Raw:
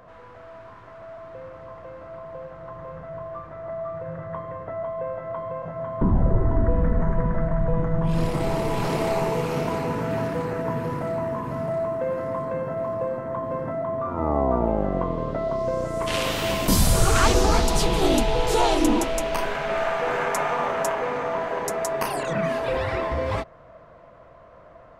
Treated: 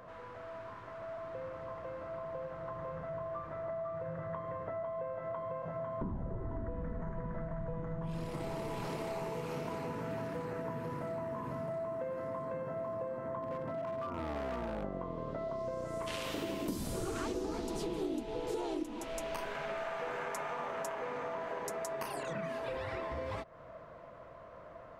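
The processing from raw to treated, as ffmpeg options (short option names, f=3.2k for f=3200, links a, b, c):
-filter_complex "[0:a]asettb=1/sr,asplit=3[a][b][c];[a]atrim=end=13.424[d];[b]atrim=start=13.42:end=14.84,asetpts=PTS-STARTPTS,afade=t=in:d=0.004:c=qsin,afade=t=out:st=1.416:d=0.004:c=qsin,asoftclip=type=hard:threshold=-23dB[e];[c]atrim=start=14.836[f];[d][e]acrossfade=d=0.004:c1=hsin:c2=qsin[g];[g][f]acrossfade=d=0.004:c1=qsin:c2=hsin,asettb=1/sr,asplit=3[h][i][j];[h]atrim=end=16.344[k];[i]atrim=start=16.34:end=18.83,asetpts=PTS-STARTPTS,afade=t=in:d=0.004:c=qsin,afade=t=out:st=2.486:d=0.004:c=qsin,equalizer=f=320:t=o:w=1.2:g=14.5[l];[j]atrim=start=18.826[m];[k][l]acrossfade=d=0.004:c1=hsin:c2=qsin[n];[n][m]acrossfade=d=0.004:c1=qsin:c2=hsin,lowshelf=f=73:g=-6,bandreject=f=740:w=20,acompressor=threshold=-34dB:ratio=6,volume=-2.5dB"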